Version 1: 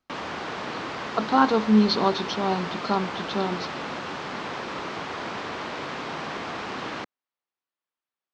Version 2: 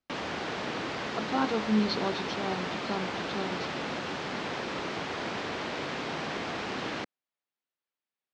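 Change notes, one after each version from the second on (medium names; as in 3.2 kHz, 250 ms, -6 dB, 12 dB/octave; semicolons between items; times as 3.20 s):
speech -8.0 dB; master: add peaking EQ 1.1 kHz -5 dB 0.85 oct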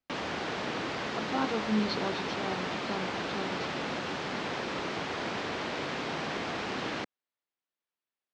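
speech -3.0 dB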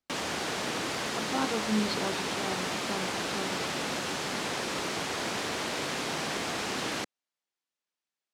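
background: remove distance through air 170 m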